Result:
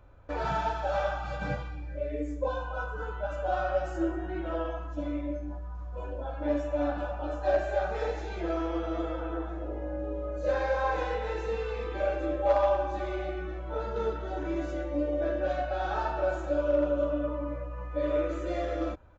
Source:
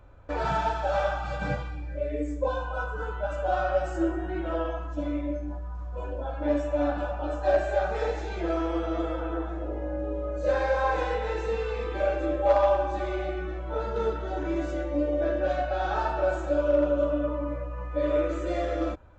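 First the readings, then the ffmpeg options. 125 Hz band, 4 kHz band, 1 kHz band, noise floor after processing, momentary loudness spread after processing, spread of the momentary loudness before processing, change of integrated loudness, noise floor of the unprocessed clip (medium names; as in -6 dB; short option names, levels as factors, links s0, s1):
-3.0 dB, -3.0 dB, -3.0 dB, -38 dBFS, 8 LU, 8 LU, -3.0 dB, -35 dBFS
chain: -af "aresample=16000,aresample=44100,volume=0.708"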